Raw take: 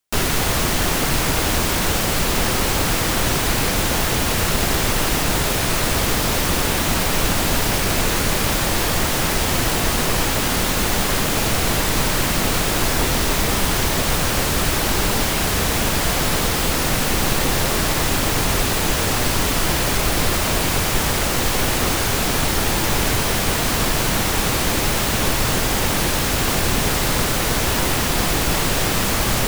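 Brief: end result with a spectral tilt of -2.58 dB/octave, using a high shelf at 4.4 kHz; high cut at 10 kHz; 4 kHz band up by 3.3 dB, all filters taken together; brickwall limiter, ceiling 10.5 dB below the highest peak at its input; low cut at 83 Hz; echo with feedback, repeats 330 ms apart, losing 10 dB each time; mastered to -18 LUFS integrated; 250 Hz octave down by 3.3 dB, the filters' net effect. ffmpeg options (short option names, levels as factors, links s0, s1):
-af "highpass=83,lowpass=10000,equalizer=f=250:t=o:g=-4.5,equalizer=f=4000:t=o:g=7.5,highshelf=f=4400:g=-6,alimiter=limit=0.126:level=0:latency=1,aecho=1:1:330|660|990|1320:0.316|0.101|0.0324|0.0104,volume=2.24"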